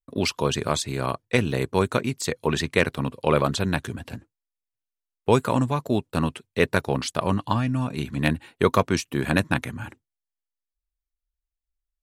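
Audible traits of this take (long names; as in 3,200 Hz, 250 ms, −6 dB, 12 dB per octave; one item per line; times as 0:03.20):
background noise floor −87 dBFS
spectral slope −5.5 dB per octave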